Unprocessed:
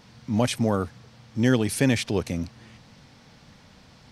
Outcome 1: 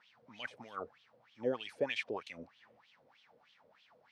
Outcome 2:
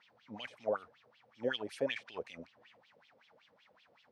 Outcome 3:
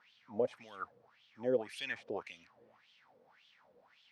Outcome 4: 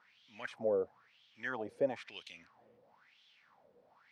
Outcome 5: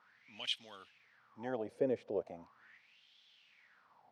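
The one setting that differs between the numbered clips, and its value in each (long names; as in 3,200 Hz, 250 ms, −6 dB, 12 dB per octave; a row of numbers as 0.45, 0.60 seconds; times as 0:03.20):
LFO wah, speed: 3.2, 5.3, 1.8, 1, 0.39 Hertz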